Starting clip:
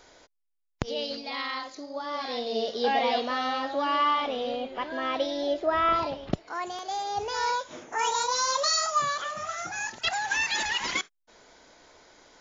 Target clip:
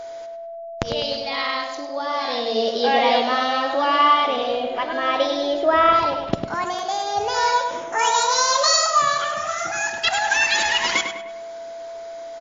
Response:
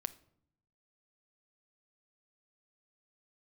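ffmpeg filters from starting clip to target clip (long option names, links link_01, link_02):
-filter_complex "[0:a]asplit=2[link_01][link_02];[link_02]adelay=101,lowpass=frequency=3400:poles=1,volume=-6dB,asplit=2[link_03][link_04];[link_04]adelay=101,lowpass=frequency=3400:poles=1,volume=0.48,asplit=2[link_05][link_06];[link_06]adelay=101,lowpass=frequency=3400:poles=1,volume=0.48,asplit=2[link_07][link_08];[link_08]adelay=101,lowpass=frequency=3400:poles=1,volume=0.48,asplit=2[link_09][link_10];[link_10]adelay=101,lowpass=frequency=3400:poles=1,volume=0.48,asplit=2[link_11][link_12];[link_12]adelay=101,lowpass=frequency=3400:poles=1,volume=0.48[link_13];[link_01][link_03][link_05][link_07][link_09][link_11][link_13]amix=inputs=7:normalize=0,asplit=2[link_14][link_15];[1:a]atrim=start_sample=2205,asetrate=29988,aresample=44100,lowshelf=frequency=280:gain=-7[link_16];[link_15][link_16]afir=irnorm=-1:irlink=0,volume=13dB[link_17];[link_14][link_17]amix=inputs=2:normalize=0,aeval=exprs='val(0)+0.0631*sin(2*PI*670*n/s)':channel_layout=same,volume=-7.5dB"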